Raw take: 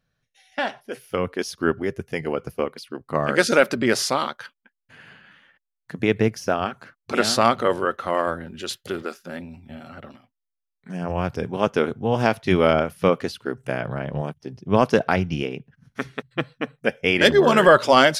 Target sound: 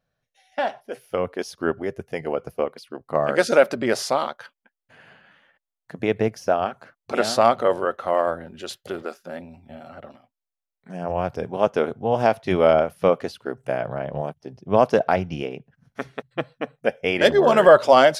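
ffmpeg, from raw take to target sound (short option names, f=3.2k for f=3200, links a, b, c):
-af "equalizer=f=660:t=o:w=1.1:g=9.5,volume=-5dB"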